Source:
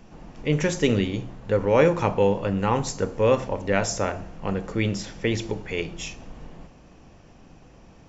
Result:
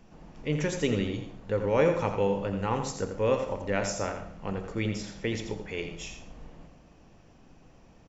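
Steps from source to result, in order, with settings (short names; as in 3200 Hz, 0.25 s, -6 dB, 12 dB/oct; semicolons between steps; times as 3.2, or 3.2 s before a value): echo 85 ms -8.5 dB; on a send at -13.5 dB: reverb RT60 0.40 s, pre-delay 80 ms; on the sum: gain -6.5 dB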